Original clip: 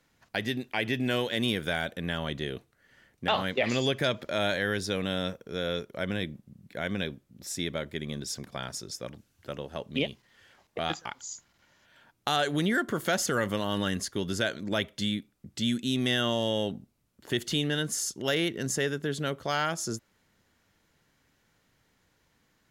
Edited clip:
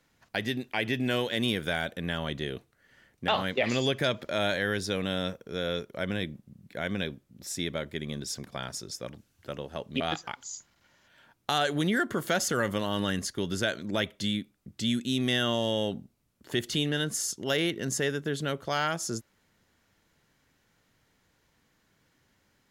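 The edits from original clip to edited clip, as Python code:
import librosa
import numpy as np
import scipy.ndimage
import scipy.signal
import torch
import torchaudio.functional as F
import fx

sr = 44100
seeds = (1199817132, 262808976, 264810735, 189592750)

y = fx.edit(x, sr, fx.cut(start_s=10.0, length_s=0.78), tone=tone)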